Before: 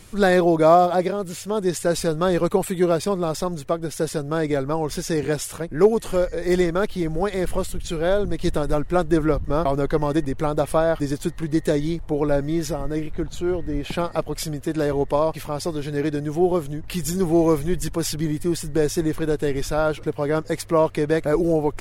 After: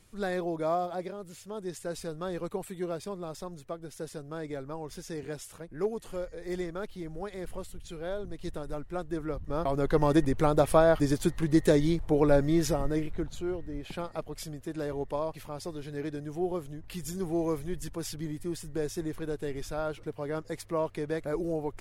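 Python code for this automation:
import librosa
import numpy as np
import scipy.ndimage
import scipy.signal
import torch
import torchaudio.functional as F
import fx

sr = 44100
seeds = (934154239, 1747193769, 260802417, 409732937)

y = fx.gain(x, sr, db=fx.line((9.25, -15.0), (10.07, -2.0), (12.78, -2.0), (13.69, -12.0)))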